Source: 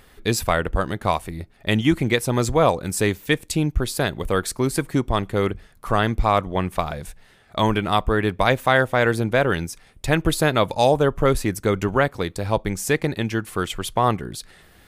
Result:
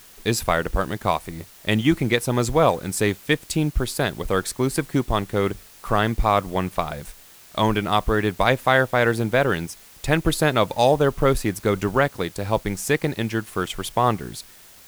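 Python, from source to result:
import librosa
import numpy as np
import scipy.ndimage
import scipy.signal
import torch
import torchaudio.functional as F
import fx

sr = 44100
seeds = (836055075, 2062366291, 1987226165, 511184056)

y = fx.law_mismatch(x, sr, coded='A')
y = fx.peak_eq(y, sr, hz=83.0, db=-5.5, octaves=0.3)
y = fx.quant_dither(y, sr, seeds[0], bits=8, dither='triangular')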